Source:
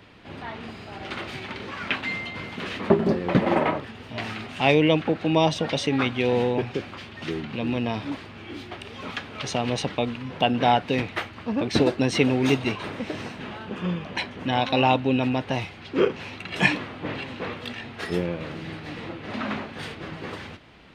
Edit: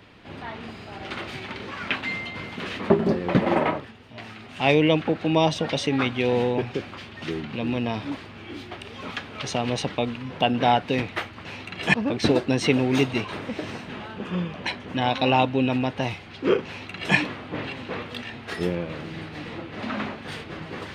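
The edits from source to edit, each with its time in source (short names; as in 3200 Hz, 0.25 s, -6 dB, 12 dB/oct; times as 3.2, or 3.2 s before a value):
3.69–4.71 dip -8 dB, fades 0.30 s
16.18–16.67 copy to 11.45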